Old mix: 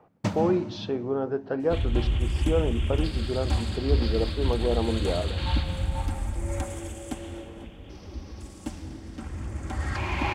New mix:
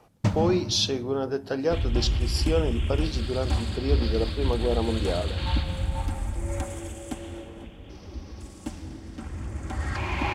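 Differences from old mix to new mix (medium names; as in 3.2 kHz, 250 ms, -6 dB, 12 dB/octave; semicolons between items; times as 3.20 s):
speech: remove low-pass 1.6 kHz 12 dB/octave; first sound: remove high-pass 150 Hz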